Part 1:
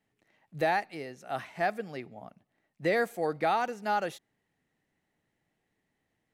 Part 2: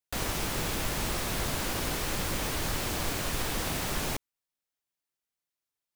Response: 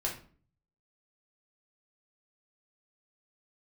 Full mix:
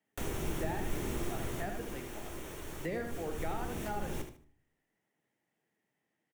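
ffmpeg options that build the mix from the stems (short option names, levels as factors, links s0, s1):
-filter_complex "[0:a]highpass=150,flanger=delay=3.1:depth=6.4:regen=70:speed=1.3:shape=sinusoidal,volume=0.841,asplit=3[s0][s1][s2];[s1]volume=0.224[s3];[s2]volume=0.531[s4];[1:a]equalizer=f=360:w=1.9:g=8.5,bandreject=f=4900:w=5.6,adelay=50,afade=t=out:st=1.26:d=0.77:silence=0.298538,afade=t=in:st=2.92:d=0.62:silence=0.421697,asplit=3[s5][s6][s7];[s6]volume=0.447[s8];[s7]volume=0.355[s9];[2:a]atrim=start_sample=2205[s10];[s3][s8]amix=inputs=2:normalize=0[s11];[s11][s10]afir=irnorm=-1:irlink=0[s12];[s4][s9]amix=inputs=2:normalize=0,aecho=0:1:75|150|225|300:1|0.23|0.0529|0.0122[s13];[s0][s5][s12][s13]amix=inputs=4:normalize=0,equalizer=f=4100:t=o:w=0.23:g=-7.5,acrossover=split=300[s14][s15];[s15]acompressor=threshold=0.00891:ratio=3[s16];[s14][s16]amix=inputs=2:normalize=0"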